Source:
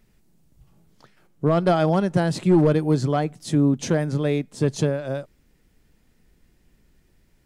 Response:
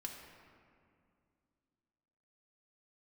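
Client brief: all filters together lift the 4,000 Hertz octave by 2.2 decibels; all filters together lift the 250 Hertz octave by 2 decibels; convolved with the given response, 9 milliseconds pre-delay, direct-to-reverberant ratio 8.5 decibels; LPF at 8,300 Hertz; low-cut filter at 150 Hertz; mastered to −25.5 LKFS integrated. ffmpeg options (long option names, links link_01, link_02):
-filter_complex "[0:a]highpass=150,lowpass=8300,equalizer=frequency=250:width_type=o:gain=4,equalizer=frequency=4000:width_type=o:gain=3,asplit=2[link_01][link_02];[1:a]atrim=start_sample=2205,adelay=9[link_03];[link_02][link_03]afir=irnorm=-1:irlink=0,volume=-6dB[link_04];[link_01][link_04]amix=inputs=2:normalize=0,volume=-5dB"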